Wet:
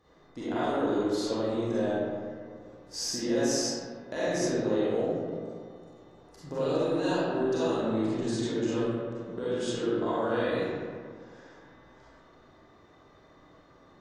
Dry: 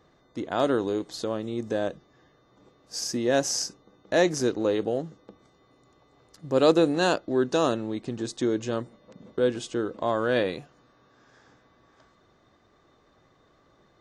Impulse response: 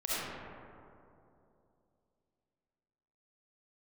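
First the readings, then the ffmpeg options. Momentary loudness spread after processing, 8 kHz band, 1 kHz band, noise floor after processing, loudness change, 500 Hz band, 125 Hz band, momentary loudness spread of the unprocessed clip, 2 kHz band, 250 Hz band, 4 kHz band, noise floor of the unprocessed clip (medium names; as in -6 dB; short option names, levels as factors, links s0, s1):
14 LU, -2.5 dB, -3.5 dB, -57 dBFS, -3.5 dB, -3.0 dB, -1.0 dB, 11 LU, -5.0 dB, -1.5 dB, -3.5 dB, -63 dBFS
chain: -filter_complex "[0:a]alimiter=limit=0.15:level=0:latency=1,acompressor=threshold=0.0355:ratio=6[s0];[1:a]atrim=start_sample=2205,asetrate=66150,aresample=44100[s1];[s0][s1]afir=irnorm=-1:irlink=0"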